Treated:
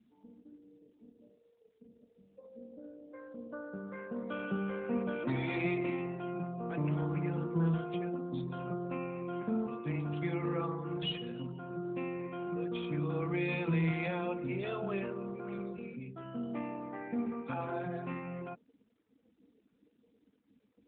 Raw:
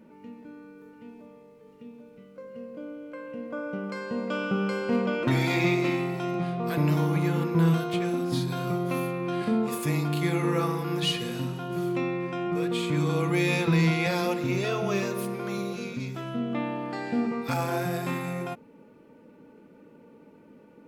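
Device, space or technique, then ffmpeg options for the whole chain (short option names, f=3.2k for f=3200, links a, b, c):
mobile call with aggressive noise cancelling: -af "highpass=f=130:w=0.5412,highpass=f=130:w=1.3066,afftdn=nr=34:nf=-39,volume=-8dB" -ar 8000 -c:a libopencore_amrnb -b:a 12200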